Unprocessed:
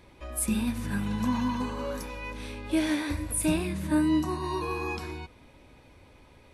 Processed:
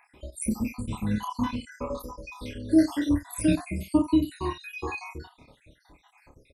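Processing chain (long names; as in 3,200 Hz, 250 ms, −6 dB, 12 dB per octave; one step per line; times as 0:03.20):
time-frequency cells dropped at random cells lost 74%
dynamic equaliser 280 Hz, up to +6 dB, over −43 dBFS, Q 5.8
ambience of single reflections 28 ms −3.5 dB, 76 ms −18 dB
level +2.5 dB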